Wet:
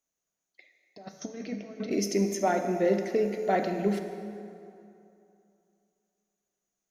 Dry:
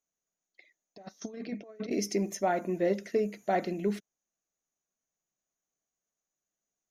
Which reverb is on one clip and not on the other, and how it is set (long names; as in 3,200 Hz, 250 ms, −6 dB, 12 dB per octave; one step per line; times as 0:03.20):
dense smooth reverb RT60 2.7 s, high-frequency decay 0.65×, DRR 5.5 dB
level +2 dB